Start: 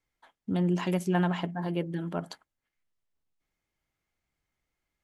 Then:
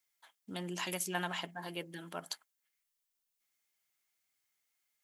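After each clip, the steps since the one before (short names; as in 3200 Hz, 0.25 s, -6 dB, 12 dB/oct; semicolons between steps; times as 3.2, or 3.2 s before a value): tilt +4.5 dB/oct; gain -5.5 dB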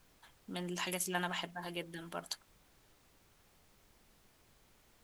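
added noise pink -67 dBFS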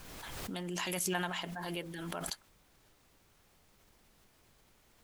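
backwards sustainer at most 22 dB/s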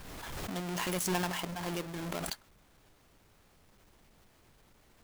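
half-waves squared off; gain -2 dB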